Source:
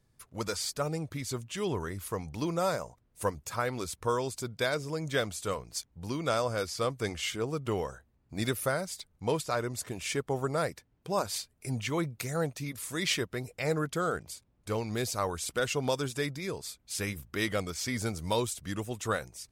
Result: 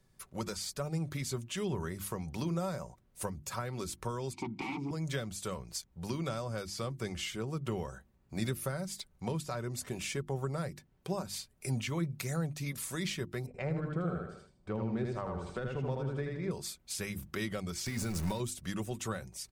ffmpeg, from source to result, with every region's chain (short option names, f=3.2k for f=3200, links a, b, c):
-filter_complex "[0:a]asettb=1/sr,asplit=3[a][b][c];[a]atrim=end=4.334[d];[b]atrim=start=4.33:end=4.91,asetpts=PTS-STARTPTS,afade=t=in:d=0.004:c=qsin,afade=t=out:st=0.576:d=0.004:c=qsin,highshelf=f=8.4k:g=-11,aeval=exprs='0.168*sin(PI/2*8.91*val(0)/0.168)':c=same,asplit=3[e][f][g];[e]bandpass=f=300:t=q:w=8,volume=0dB[h];[f]bandpass=f=870:t=q:w=8,volume=-6dB[i];[g]bandpass=f=2.24k:t=q:w=8,volume=-9dB[j];[h][i][j]amix=inputs=3:normalize=0[k];[c]atrim=start=4.906[l];[d][k]acrossfade=d=0.004:c1=hsin:c2=qsin[m];[m][l]acrossfade=d=0.004:c1=qsin:c2=hsin,asettb=1/sr,asplit=3[n][o][p];[n]atrim=end=13.464[q];[o]atrim=start=13.46:end=16.51,asetpts=PTS-STARTPTS,afade=t=in:d=0.004:c=qsin,afade=t=out:st=3.046:d=0.004:c=qsin,equalizer=f=8.4k:t=o:w=0.21:g=8,adynamicsmooth=sensitivity=0.5:basefreq=1.5k,aecho=1:1:79|158|237|316:0.708|0.241|0.0818|0.0278,atrim=end_sample=134505[r];[p]atrim=start=16.506[s];[q][r]acrossfade=d=0.004:c1=hsin:c2=qsin[t];[t][s]acrossfade=d=0.004:c1=qsin:c2=hsin,asettb=1/sr,asplit=3[u][v][w];[u]atrim=end=17.864[x];[v]atrim=start=17.86:end=18.4,asetpts=PTS-STARTPTS,afade=t=in:d=0.004:c=qsin,afade=t=out:st=0.536:d=0.004:c=qsin,aeval=exprs='val(0)+0.5*0.0188*sgn(val(0))':c=same,bandreject=f=3.2k:w=11,acompressor=threshold=-28dB:ratio=6:attack=3.2:release=140:knee=1:detection=peak[y];[w]atrim=start=18.396[z];[x][y]acrossfade=d=0.004:c1=hsin:c2=qsin[aa];[aa][z]acrossfade=d=0.004:c1=qsin:c2=hsin,acrossover=split=210[ab][ac];[ac]acompressor=threshold=-39dB:ratio=6[ad];[ab][ad]amix=inputs=2:normalize=0,bandreject=f=50:t=h:w=6,bandreject=f=100:t=h:w=6,bandreject=f=150:t=h:w=6,bandreject=f=200:t=h:w=6,bandreject=f=250:t=h:w=6,bandreject=f=300:t=h:w=6,bandreject=f=350:t=h:w=6,aecho=1:1:5.3:0.36,volume=2dB"